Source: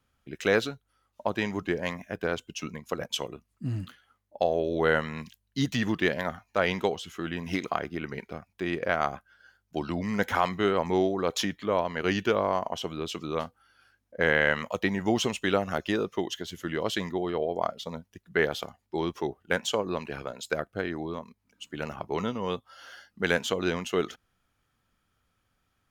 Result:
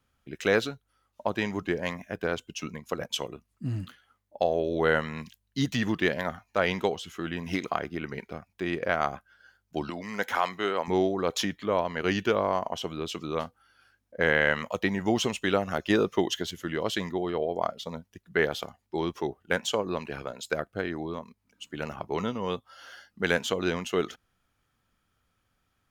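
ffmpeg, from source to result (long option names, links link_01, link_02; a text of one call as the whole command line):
ffmpeg -i in.wav -filter_complex "[0:a]asettb=1/sr,asplit=3[link_01][link_02][link_03];[link_01]atrim=end=9.904[link_04];[link_02]atrim=start=9.9:end=10.88,asetpts=PTS-STARTPTS,afade=type=in:duration=0.004:curve=qsin,afade=type=out:start_time=0.976:duration=0.004:curve=qsin,highpass=frequency=530:poles=1[link_05];[link_03]atrim=start=10.876[link_06];[link_04][link_05]acrossfade=duration=0.004:curve1=hsin:curve2=qsin[link_07];[link_07][link_06]acrossfade=duration=0.004:curve1=qsin:curve2=hsin,asplit=3[link_08][link_09][link_10];[link_08]atrim=end=15.902[link_11];[link_09]atrim=start=15.898:end=16.512,asetpts=PTS-STARTPTS,volume=4.5dB[link_12];[link_10]atrim=start=16.508[link_13];[link_11][link_12]acrossfade=duration=0.004:curve1=hsin:curve2=hsin[link_14];[link_14][link_13]acrossfade=duration=0.004:curve1=hsin:curve2=hsin" out.wav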